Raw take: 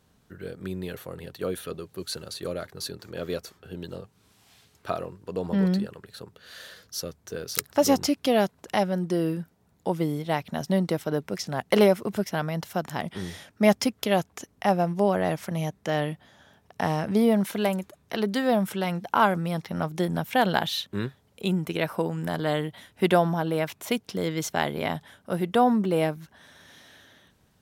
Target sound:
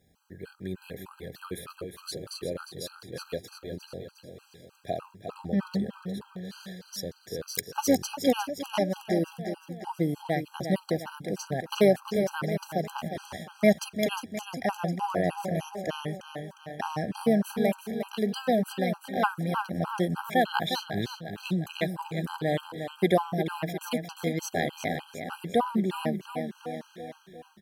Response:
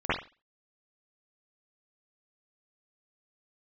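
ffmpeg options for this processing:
-af "acrusher=bits=11:mix=0:aa=0.000001,aecho=1:1:356|712|1068|1424|1780|2136:0.398|0.215|0.116|0.0627|0.0339|0.0183,afftfilt=real='re*gt(sin(2*PI*3.3*pts/sr)*(1-2*mod(floor(b*sr/1024/810),2)),0)':imag='im*gt(sin(2*PI*3.3*pts/sr)*(1-2*mod(floor(b*sr/1024/810),2)),0)':win_size=1024:overlap=0.75,volume=0.891"

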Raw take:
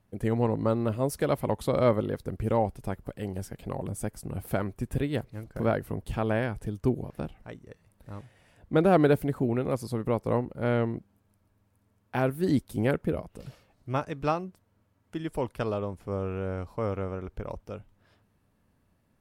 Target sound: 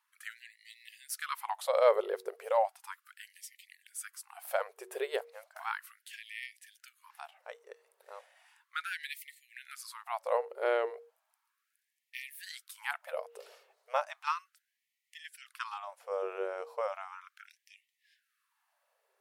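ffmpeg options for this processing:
-af "bandreject=f=93.97:t=h:w=4,bandreject=f=187.94:t=h:w=4,bandreject=f=281.91:t=h:w=4,bandreject=f=375.88:t=h:w=4,bandreject=f=469.85:t=h:w=4,afftfilt=real='re*gte(b*sr/1024,360*pow(1800/360,0.5+0.5*sin(2*PI*0.35*pts/sr)))':imag='im*gte(b*sr/1024,360*pow(1800/360,0.5+0.5*sin(2*PI*0.35*pts/sr)))':win_size=1024:overlap=0.75"

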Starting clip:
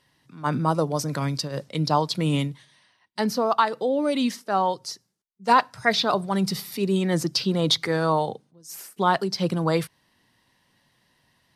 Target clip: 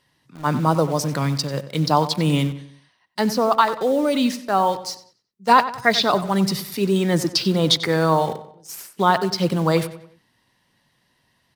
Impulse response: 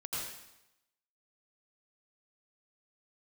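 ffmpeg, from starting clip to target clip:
-filter_complex "[0:a]asplit=2[s0][s1];[s1]acrusher=bits=5:mix=0:aa=0.000001,volume=0.531[s2];[s0][s2]amix=inputs=2:normalize=0,asplit=2[s3][s4];[s4]adelay=93,lowpass=f=4300:p=1,volume=0.211,asplit=2[s5][s6];[s6]adelay=93,lowpass=f=4300:p=1,volume=0.42,asplit=2[s7][s8];[s8]adelay=93,lowpass=f=4300:p=1,volume=0.42,asplit=2[s9][s10];[s10]adelay=93,lowpass=f=4300:p=1,volume=0.42[s11];[s3][s5][s7][s9][s11]amix=inputs=5:normalize=0"

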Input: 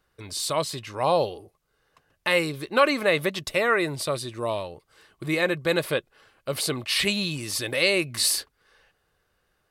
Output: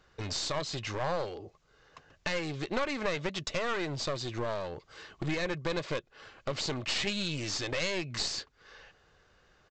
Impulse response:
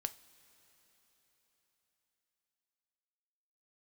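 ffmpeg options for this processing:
-af "acompressor=threshold=0.0126:ratio=3,aresample=16000,aeval=exprs='clip(val(0),-1,0.00708)':c=same,aresample=44100,volume=2.24"

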